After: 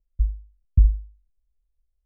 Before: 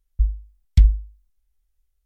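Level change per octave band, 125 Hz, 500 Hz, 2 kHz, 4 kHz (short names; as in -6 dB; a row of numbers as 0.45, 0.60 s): -2.5 dB, n/a, under -35 dB, under -35 dB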